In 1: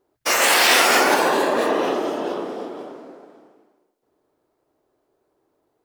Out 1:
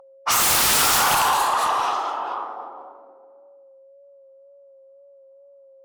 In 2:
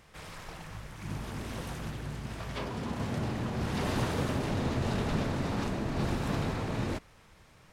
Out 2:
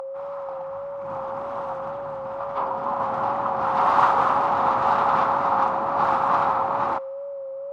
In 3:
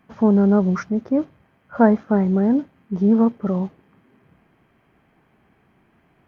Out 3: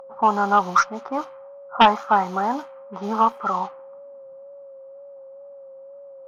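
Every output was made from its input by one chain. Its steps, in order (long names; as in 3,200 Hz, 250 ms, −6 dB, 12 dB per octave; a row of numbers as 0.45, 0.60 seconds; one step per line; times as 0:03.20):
low-pass that shuts in the quiet parts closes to 440 Hz, open at −15 dBFS
first difference
steady tone 550 Hz −56 dBFS
tape wow and flutter 36 cents
flat-topped bell 1,000 Hz +16 dB 1.1 octaves
harmonic generator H 3 −10 dB, 4 −19 dB, 7 −7 dB, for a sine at −6 dBFS
normalise the peak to −6 dBFS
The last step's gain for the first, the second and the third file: −1.5, +15.5, +6.5 decibels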